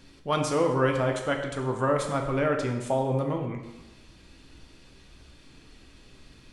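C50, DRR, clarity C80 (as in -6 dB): 6.0 dB, 2.0 dB, 8.0 dB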